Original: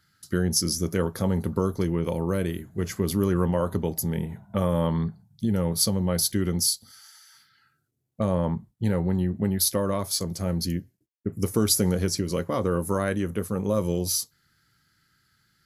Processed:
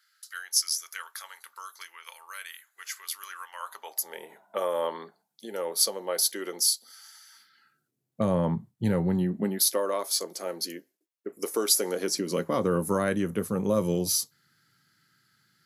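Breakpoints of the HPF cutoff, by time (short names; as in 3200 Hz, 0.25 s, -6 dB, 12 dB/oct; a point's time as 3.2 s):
HPF 24 dB/oct
3.51 s 1300 Hz
4.33 s 410 Hz
6.69 s 410 Hz
8.31 s 110 Hz
9.1 s 110 Hz
9.81 s 360 Hz
11.83 s 360 Hz
12.71 s 120 Hz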